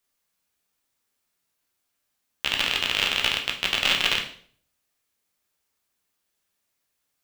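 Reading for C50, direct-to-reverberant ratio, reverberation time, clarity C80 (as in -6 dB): 9.0 dB, 1.0 dB, 0.55 s, 13.5 dB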